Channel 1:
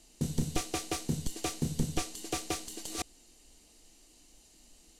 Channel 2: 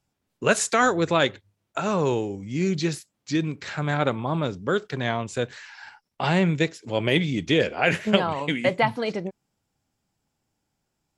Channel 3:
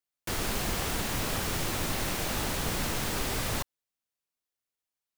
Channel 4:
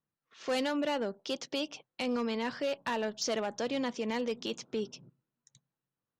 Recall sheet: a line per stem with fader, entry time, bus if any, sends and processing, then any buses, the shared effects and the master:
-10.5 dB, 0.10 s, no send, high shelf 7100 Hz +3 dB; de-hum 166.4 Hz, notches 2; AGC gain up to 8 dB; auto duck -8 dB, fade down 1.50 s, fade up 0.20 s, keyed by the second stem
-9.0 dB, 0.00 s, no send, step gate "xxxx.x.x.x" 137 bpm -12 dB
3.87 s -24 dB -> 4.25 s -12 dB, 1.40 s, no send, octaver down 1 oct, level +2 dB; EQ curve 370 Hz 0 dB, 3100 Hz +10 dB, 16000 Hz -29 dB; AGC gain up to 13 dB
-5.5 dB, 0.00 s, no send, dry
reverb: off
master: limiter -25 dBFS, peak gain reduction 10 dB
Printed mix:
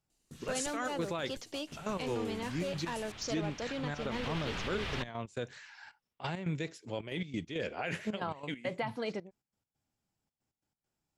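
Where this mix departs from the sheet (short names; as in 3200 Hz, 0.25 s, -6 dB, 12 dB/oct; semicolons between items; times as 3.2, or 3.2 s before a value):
stem 1 -10.5 dB -> -18.0 dB; stem 3 -24.0 dB -> -34.0 dB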